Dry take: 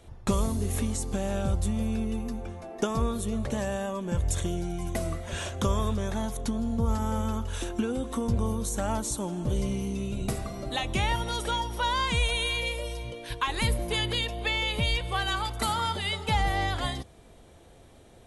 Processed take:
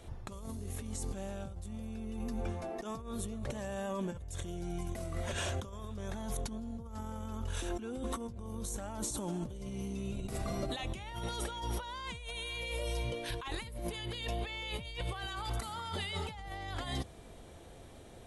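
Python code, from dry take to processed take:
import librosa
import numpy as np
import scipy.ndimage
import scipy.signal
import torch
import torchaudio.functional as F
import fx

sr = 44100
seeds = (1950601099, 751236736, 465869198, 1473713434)

y = fx.over_compress(x, sr, threshold_db=-35.0, ratio=-1.0)
y = y * 10.0 ** (-4.5 / 20.0)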